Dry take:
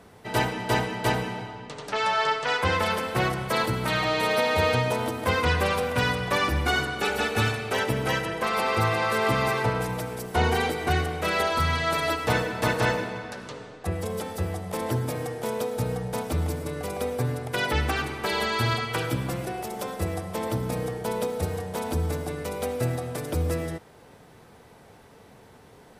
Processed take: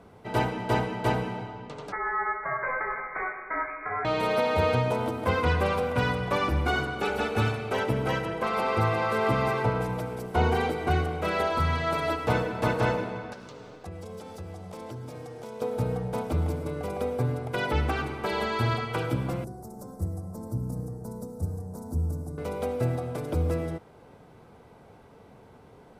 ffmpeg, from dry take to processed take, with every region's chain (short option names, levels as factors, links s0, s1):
-filter_complex "[0:a]asettb=1/sr,asplit=3[s0][s1][s2];[s0]atrim=end=1.924[s3];[s1]atrim=start=1.92:end=4.05,asetpts=PTS-STARTPTS,afade=t=in:d=0.004:c=qsin,afade=t=out:st=2.126:d=0.004:c=qsin,highpass=600,lowpass=f=2200:t=q:w=0.5098,lowpass=f=2200:t=q:w=0.6013,lowpass=f=2200:t=q:w=0.9,lowpass=f=2200:t=q:w=2.563,afreqshift=-2600[s4];[s2]atrim=start=4.046[s5];[s3][s4]acrossfade=d=0.004:c1=hsin:c2=qsin[s6];[s6][s5]acrossfade=d=0.004:c1=qsin:c2=hsin,asettb=1/sr,asplit=3[s7][s8][s9];[s7]atrim=end=13.334[s10];[s8]atrim=start=13.33:end=15.62,asetpts=PTS-STARTPTS,afade=t=in:d=0.004:c=qsin,afade=t=out:st=2.286:d=0.004:c=qsin,equalizer=f=5700:t=o:w=1.5:g=8.5,acompressor=threshold=0.0126:ratio=3:attack=3.2:release=140:knee=1:detection=peak,aeval=exprs='sgn(val(0))*max(abs(val(0))-0.00106,0)':c=same[s11];[s9]atrim=start=15.616[s12];[s10][s11]acrossfade=d=0.004:c1=hsin:c2=qsin[s13];[s13][s12]acrossfade=d=0.004:c1=qsin:c2=hsin,asettb=1/sr,asplit=3[s14][s15][s16];[s14]atrim=end=19.444[s17];[s15]atrim=start=19.44:end=22.38,asetpts=PTS-STARTPTS,afade=t=in:d=0.004:c=qsin,afade=t=out:st=2.936:d=0.004:c=qsin,asuperstop=centerf=2800:order=4:qfactor=0.56,acrossover=split=210|3000[s18][s19][s20];[s19]acompressor=threshold=0.002:ratio=2:attack=3.2:release=140:knee=2.83:detection=peak[s21];[s18][s21][s20]amix=inputs=3:normalize=0,equalizer=f=270:t=o:w=0.41:g=4[s22];[s16]atrim=start=22.376[s23];[s17][s22]acrossfade=d=0.004:c1=hsin:c2=qsin[s24];[s24][s23]acrossfade=d=0.004:c1=qsin:c2=hsin,highshelf=f=2700:g=-11.5,bandreject=f=1800:w=9.3"